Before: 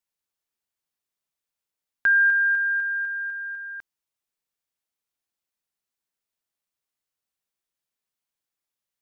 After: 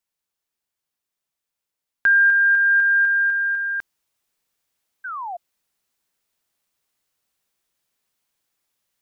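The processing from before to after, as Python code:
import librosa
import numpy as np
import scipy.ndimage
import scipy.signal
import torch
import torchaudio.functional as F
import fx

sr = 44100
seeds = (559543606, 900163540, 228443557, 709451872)

y = fx.spec_paint(x, sr, seeds[0], shape='fall', start_s=5.04, length_s=0.33, low_hz=670.0, high_hz=1600.0, level_db=-41.0)
y = fx.rider(y, sr, range_db=4, speed_s=0.5)
y = F.gain(torch.from_numpy(y), 7.0).numpy()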